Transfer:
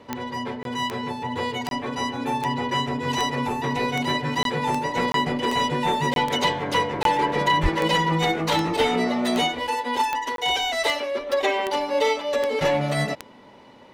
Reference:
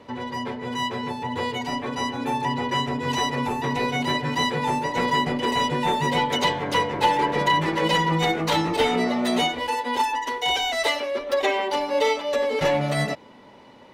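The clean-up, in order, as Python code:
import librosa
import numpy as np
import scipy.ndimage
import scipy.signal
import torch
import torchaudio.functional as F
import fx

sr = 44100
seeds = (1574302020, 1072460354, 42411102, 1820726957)

y = fx.fix_declick_ar(x, sr, threshold=10.0)
y = fx.highpass(y, sr, hz=140.0, slope=24, at=(7.62, 7.74), fade=0.02)
y = fx.fix_interpolate(y, sr, at_s=(0.63, 1.69, 4.43, 5.12, 6.14, 7.03, 10.36), length_ms=22.0)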